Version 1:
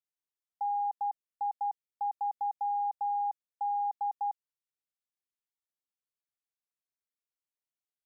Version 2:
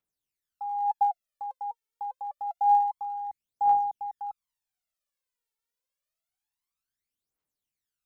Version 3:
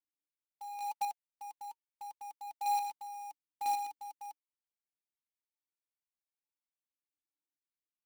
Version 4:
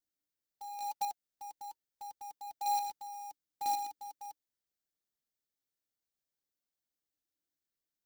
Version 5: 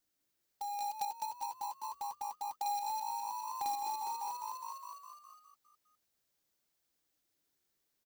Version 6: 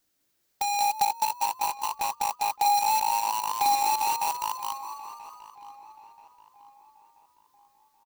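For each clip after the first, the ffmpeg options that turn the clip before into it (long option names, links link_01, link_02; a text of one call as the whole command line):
ffmpeg -i in.wav -af "aphaser=in_gain=1:out_gain=1:delay=2.3:decay=0.74:speed=0.27:type=triangular,volume=1.5dB" out.wav
ffmpeg -i in.wav -filter_complex "[0:a]asplit=3[link_01][link_02][link_03];[link_01]bandpass=frequency=300:width_type=q:width=8,volume=0dB[link_04];[link_02]bandpass=frequency=870:width_type=q:width=8,volume=-6dB[link_05];[link_03]bandpass=frequency=2240:width_type=q:width=8,volume=-9dB[link_06];[link_04][link_05][link_06]amix=inputs=3:normalize=0,acrusher=bits=2:mode=log:mix=0:aa=0.000001,volume=-2dB" out.wav
ffmpeg -i in.wav -af "equalizer=frequency=1000:width_type=o:width=0.67:gain=-10,equalizer=frequency=2500:width_type=o:width=0.67:gain=-10,equalizer=frequency=10000:width_type=o:width=0.67:gain=-6,volume=5.5dB" out.wav
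ffmpeg -i in.wav -filter_complex "[0:a]asplit=2[link_01][link_02];[link_02]asplit=8[link_03][link_04][link_05][link_06][link_07][link_08][link_09][link_10];[link_03]adelay=205,afreqshift=53,volume=-5dB[link_11];[link_04]adelay=410,afreqshift=106,volume=-9.6dB[link_12];[link_05]adelay=615,afreqshift=159,volume=-14.2dB[link_13];[link_06]adelay=820,afreqshift=212,volume=-18.7dB[link_14];[link_07]adelay=1025,afreqshift=265,volume=-23.3dB[link_15];[link_08]adelay=1230,afreqshift=318,volume=-27.9dB[link_16];[link_09]adelay=1435,afreqshift=371,volume=-32.5dB[link_17];[link_10]adelay=1640,afreqshift=424,volume=-37.1dB[link_18];[link_11][link_12][link_13][link_14][link_15][link_16][link_17][link_18]amix=inputs=8:normalize=0[link_19];[link_01][link_19]amix=inputs=2:normalize=0,acompressor=threshold=-46dB:ratio=3,volume=8dB" out.wav
ffmpeg -i in.wav -filter_complex "[0:a]asplit=2[link_01][link_02];[link_02]acrusher=bits=5:mix=0:aa=0.000001,volume=-3.5dB[link_03];[link_01][link_03]amix=inputs=2:normalize=0,asplit=2[link_04][link_05];[link_05]adelay=982,lowpass=frequency=2400:poles=1,volume=-16dB,asplit=2[link_06][link_07];[link_07]adelay=982,lowpass=frequency=2400:poles=1,volume=0.44,asplit=2[link_08][link_09];[link_09]adelay=982,lowpass=frequency=2400:poles=1,volume=0.44,asplit=2[link_10][link_11];[link_11]adelay=982,lowpass=frequency=2400:poles=1,volume=0.44[link_12];[link_04][link_06][link_08][link_10][link_12]amix=inputs=5:normalize=0,volume=8.5dB" out.wav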